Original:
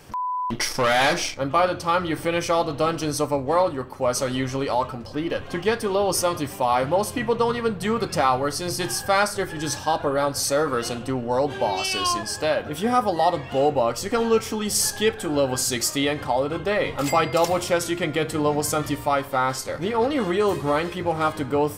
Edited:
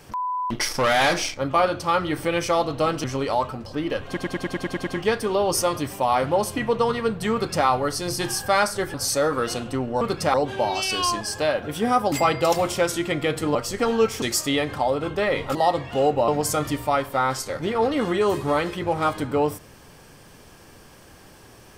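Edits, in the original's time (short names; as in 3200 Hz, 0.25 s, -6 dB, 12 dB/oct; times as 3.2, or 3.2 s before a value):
3.04–4.44 cut
5.47 stutter 0.10 s, 9 plays
7.93–8.26 copy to 11.36
9.54–10.29 cut
13.14–13.87 swap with 17.04–18.47
14.54–15.71 cut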